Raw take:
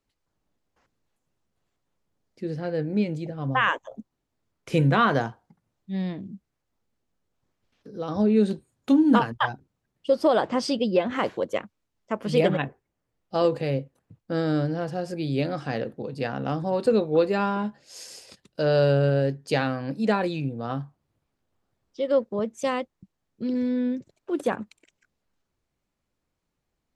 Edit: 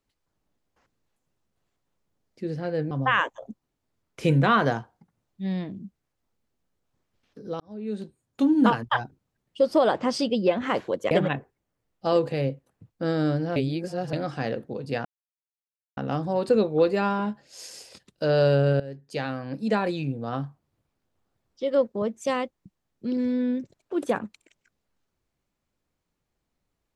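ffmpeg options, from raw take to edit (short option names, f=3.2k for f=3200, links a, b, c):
-filter_complex "[0:a]asplit=8[a][b][c][d][e][f][g][h];[a]atrim=end=2.912[i];[b]atrim=start=3.398:end=8.09,asetpts=PTS-STARTPTS,afade=t=out:st=4.688:d=0.004:c=hsin[j];[c]atrim=start=8.09:end=11.602,asetpts=PTS-STARTPTS,afade=t=in:d=1.13[k];[d]atrim=start=12.398:end=14.852[l];[e]atrim=start=14.848:end=15.422,asetpts=PTS-STARTPTS,areverse[m];[f]atrim=start=15.418:end=16.34,asetpts=PTS-STARTPTS,afade=t=out:st=0.918:d=0.004:c=hsin,apad=pad_dur=0.92[n];[g]atrim=start=16.34:end=19.17,asetpts=PTS-STARTPTS,afade=t=in:d=0.004:c=hsin,afade=t=out:st=2.826:d=0.004:c=hsin:silence=0.141254[o];[h]atrim=start=19.17,asetpts=PTS-STARTPTS,afade=t=in:d=1.47:c=qsin:silence=0.141254[p];[j][k]concat=n=2:v=0:a=1[q];[i][q]acrossfade=d=0.004:c1=hsin:c2=hsin[r];[r][l]acrossfade=d=0.004:c1=hsin:c2=hsin[s];[s][m]acrossfade=d=0.004:c1=hsin:c2=hsin[t];[n][o][p]concat=n=3:v=0:a=1[u];[t][u]acrossfade=d=0.004:c1=hsin:c2=hsin"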